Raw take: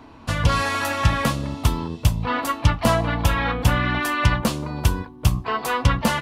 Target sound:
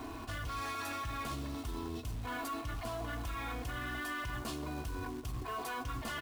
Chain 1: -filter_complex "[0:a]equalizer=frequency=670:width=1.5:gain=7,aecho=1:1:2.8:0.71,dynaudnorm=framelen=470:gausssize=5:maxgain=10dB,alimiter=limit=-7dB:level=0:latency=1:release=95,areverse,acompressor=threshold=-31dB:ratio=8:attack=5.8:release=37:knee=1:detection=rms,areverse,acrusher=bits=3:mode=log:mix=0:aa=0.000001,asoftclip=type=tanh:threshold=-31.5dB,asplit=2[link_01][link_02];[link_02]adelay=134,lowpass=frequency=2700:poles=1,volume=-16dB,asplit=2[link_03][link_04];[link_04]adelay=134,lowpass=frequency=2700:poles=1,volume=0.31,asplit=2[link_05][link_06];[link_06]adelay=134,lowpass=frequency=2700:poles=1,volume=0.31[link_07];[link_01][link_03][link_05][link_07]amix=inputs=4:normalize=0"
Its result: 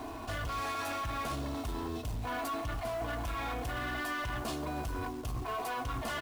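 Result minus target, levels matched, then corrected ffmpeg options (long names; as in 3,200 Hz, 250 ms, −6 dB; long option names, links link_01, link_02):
downward compressor: peak gain reduction −5.5 dB; 500 Hz band +2.5 dB
-filter_complex "[0:a]aecho=1:1:2.8:0.71,dynaudnorm=framelen=470:gausssize=5:maxgain=10dB,alimiter=limit=-7dB:level=0:latency=1:release=95,areverse,acompressor=threshold=-37dB:ratio=8:attack=5.8:release=37:knee=1:detection=rms,areverse,acrusher=bits=3:mode=log:mix=0:aa=0.000001,asoftclip=type=tanh:threshold=-31.5dB,asplit=2[link_01][link_02];[link_02]adelay=134,lowpass=frequency=2700:poles=1,volume=-16dB,asplit=2[link_03][link_04];[link_04]adelay=134,lowpass=frequency=2700:poles=1,volume=0.31,asplit=2[link_05][link_06];[link_06]adelay=134,lowpass=frequency=2700:poles=1,volume=0.31[link_07];[link_01][link_03][link_05][link_07]amix=inputs=4:normalize=0"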